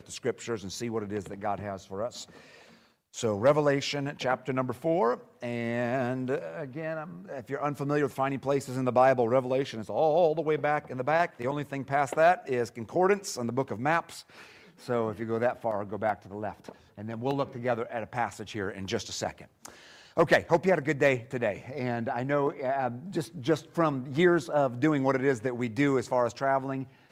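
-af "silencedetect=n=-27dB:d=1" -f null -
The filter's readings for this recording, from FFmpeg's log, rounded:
silence_start: 2.07
silence_end: 3.18 | silence_duration: 1.11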